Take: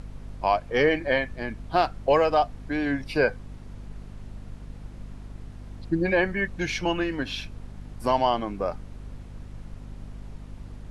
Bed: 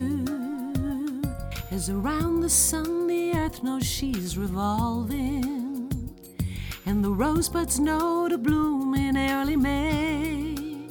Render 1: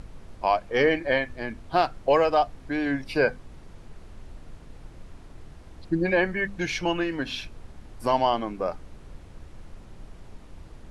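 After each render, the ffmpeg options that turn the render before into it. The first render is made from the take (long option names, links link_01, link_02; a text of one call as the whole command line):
ffmpeg -i in.wav -af "bandreject=frequency=50:width_type=h:width=4,bandreject=frequency=100:width_type=h:width=4,bandreject=frequency=150:width_type=h:width=4,bandreject=frequency=200:width_type=h:width=4,bandreject=frequency=250:width_type=h:width=4" out.wav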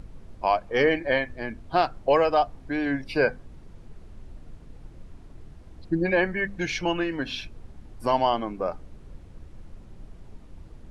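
ffmpeg -i in.wav -af "afftdn=noise_reduction=6:noise_floor=-48" out.wav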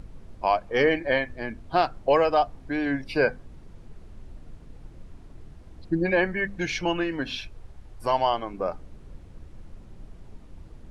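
ffmpeg -i in.wav -filter_complex "[0:a]asettb=1/sr,asplit=3[link_01][link_02][link_03];[link_01]atrim=end=7.374[link_04];[link_02]atrim=start=7.37:end=8.54,asetpts=PTS-STARTPTS,afade=type=in:duration=0.004:curve=qsin,afade=type=out:start_time=1.166:duration=0.004:curve=qsin,equalizer=frequency=230:width_type=o:width=1:gain=-9[link_05];[link_03]atrim=start=8.536[link_06];[link_04][link_05]acrossfade=duration=0.004:curve1=hsin:curve2=qsin[link_07];[link_07][link_06]acrossfade=duration=0.004:curve1=qsin:curve2=hsin" out.wav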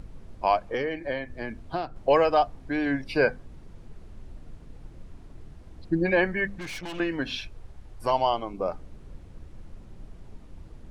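ffmpeg -i in.wav -filter_complex "[0:a]asettb=1/sr,asplit=3[link_01][link_02][link_03];[link_01]atrim=end=0.744[link_04];[link_02]atrim=start=0.74:end=1.96,asetpts=PTS-STARTPTS,afade=type=in:duration=0.004:curve=qsin,afade=type=out:start_time=1.216:duration=0.004:curve=qsin,acrossover=split=520|4400[link_05][link_06][link_07];[link_05]acompressor=threshold=-31dB:ratio=4[link_08];[link_06]acompressor=threshold=-34dB:ratio=4[link_09];[link_07]acompressor=threshold=-56dB:ratio=4[link_10];[link_08][link_09][link_10]amix=inputs=3:normalize=0[link_11];[link_03]atrim=start=1.956[link_12];[link_04][link_11]acrossfade=duration=0.004:curve1=hsin:curve2=qsin[link_13];[link_13][link_12]acrossfade=duration=0.004:curve1=qsin:curve2=hsin,asettb=1/sr,asplit=3[link_14][link_15][link_16];[link_14]atrim=end=6.594[link_17];[link_15]atrim=start=6.59:end=7,asetpts=PTS-STARTPTS,afade=type=in:duration=0.004:curve=qsin,afade=type=out:start_time=0.406:duration=0.004:curve=qsin,aeval=exprs='(tanh(50.1*val(0)+0.7)-tanh(0.7))/50.1':channel_layout=same[link_18];[link_16]atrim=start=6.996[link_19];[link_17][link_18]acrossfade=duration=0.004:curve1=hsin:curve2=qsin[link_20];[link_20][link_19]acrossfade=duration=0.004:curve1=qsin:curve2=hsin,asettb=1/sr,asplit=3[link_21][link_22][link_23];[link_21]atrim=end=8.104[link_24];[link_22]atrim=start=8.1:end=8.7,asetpts=PTS-STARTPTS,afade=type=in:duration=0.004:curve=qsin,afade=type=out:start_time=0.596:duration=0.004:curve=qsin,equalizer=frequency=1700:width_type=o:width=0.39:gain=-15[link_25];[link_23]atrim=start=8.696[link_26];[link_24][link_25]acrossfade=duration=0.004:curve1=hsin:curve2=qsin[link_27];[link_27][link_26]acrossfade=duration=0.004:curve1=qsin:curve2=hsin" out.wav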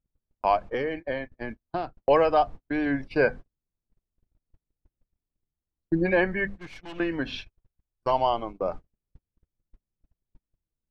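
ffmpeg -i in.wav -af "agate=range=-44dB:threshold=-34dB:ratio=16:detection=peak,aemphasis=mode=reproduction:type=50fm" out.wav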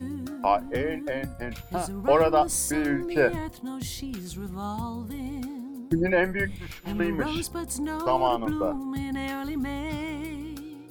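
ffmpeg -i in.wav -i bed.wav -filter_complex "[1:a]volume=-7dB[link_01];[0:a][link_01]amix=inputs=2:normalize=0" out.wav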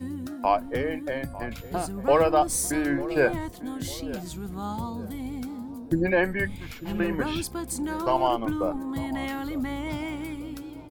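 ffmpeg -i in.wav -filter_complex "[0:a]asplit=2[link_01][link_02];[link_02]adelay=898,lowpass=frequency=1000:poles=1,volume=-15dB,asplit=2[link_03][link_04];[link_04]adelay=898,lowpass=frequency=1000:poles=1,volume=0.49,asplit=2[link_05][link_06];[link_06]adelay=898,lowpass=frequency=1000:poles=1,volume=0.49,asplit=2[link_07][link_08];[link_08]adelay=898,lowpass=frequency=1000:poles=1,volume=0.49,asplit=2[link_09][link_10];[link_10]adelay=898,lowpass=frequency=1000:poles=1,volume=0.49[link_11];[link_01][link_03][link_05][link_07][link_09][link_11]amix=inputs=6:normalize=0" out.wav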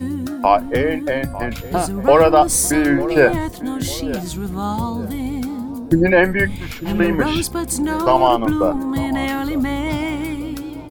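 ffmpeg -i in.wav -af "volume=10dB,alimiter=limit=-2dB:level=0:latency=1" out.wav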